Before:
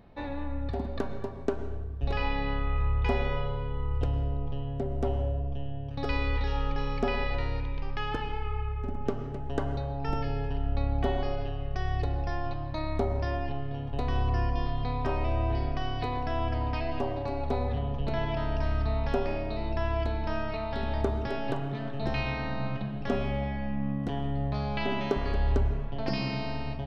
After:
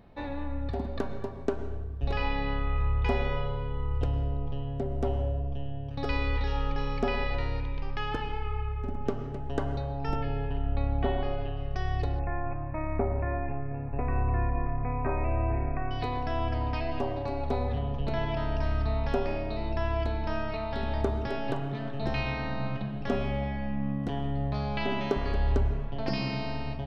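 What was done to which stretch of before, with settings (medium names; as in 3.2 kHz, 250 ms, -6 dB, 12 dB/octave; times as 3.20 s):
10.15–11.57 s: low-pass 3.7 kHz 24 dB/octave
12.19–15.91 s: brick-wall FIR low-pass 2.7 kHz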